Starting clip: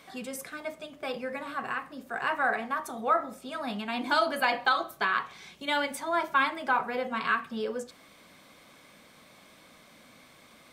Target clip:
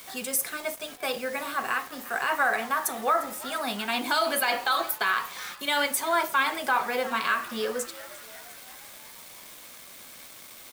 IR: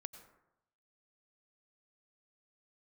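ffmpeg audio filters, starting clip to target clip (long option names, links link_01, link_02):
-filter_complex "[0:a]aemphasis=mode=production:type=bsi,alimiter=limit=-19dB:level=0:latency=1:release=59,acrusher=bits=7:mix=0:aa=0.000001,asplit=7[link_01][link_02][link_03][link_04][link_05][link_06][link_07];[link_02]adelay=351,afreqshift=110,volume=-18dB[link_08];[link_03]adelay=702,afreqshift=220,volume=-22.2dB[link_09];[link_04]adelay=1053,afreqshift=330,volume=-26.3dB[link_10];[link_05]adelay=1404,afreqshift=440,volume=-30.5dB[link_11];[link_06]adelay=1755,afreqshift=550,volume=-34.6dB[link_12];[link_07]adelay=2106,afreqshift=660,volume=-38.8dB[link_13];[link_01][link_08][link_09][link_10][link_11][link_12][link_13]amix=inputs=7:normalize=0,volume=4.5dB"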